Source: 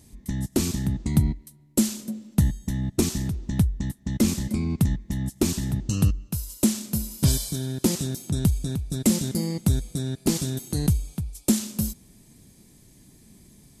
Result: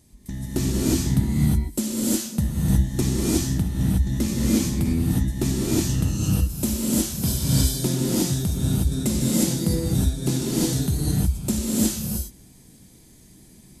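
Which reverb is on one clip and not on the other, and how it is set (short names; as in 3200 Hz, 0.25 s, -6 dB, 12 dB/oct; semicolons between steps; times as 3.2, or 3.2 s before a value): non-linear reverb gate 0.39 s rising, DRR -7 dB; gain -4.5 dB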